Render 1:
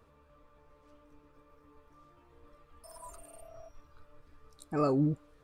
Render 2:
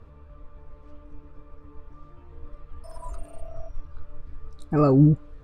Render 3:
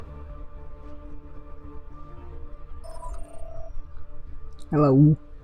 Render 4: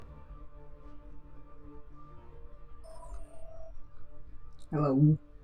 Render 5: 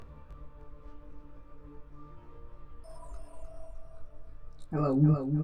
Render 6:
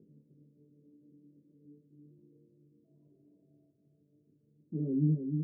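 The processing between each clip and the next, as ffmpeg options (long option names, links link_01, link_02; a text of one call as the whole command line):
ffmpeg -i in.wav -af "aemphasis=mode=reproduction:type=bsi,volume=6.5dB" out.wav
ffmpeg -i in.wav -af "acompressor=mode=upward:threshold=-29dB:ratio=2.5" out.wav
ffmpeg -i in.wav -af "flanger=delay=19:depth=2.6:speed=0.42,volume=-6dB" out.wav
ffmpeg -i in.wav -af "aecho=1:1:306|612|918|1224|1530:0.473|0.185|0.072|0.0281|0.0109" out.wav
ffmpeg -i in.wav -af "asoftclip=type=tanh:threshold=-16dB,asuperpass=centerf=240:order=8:qfactor=0.93,volume=-2dB" out.wav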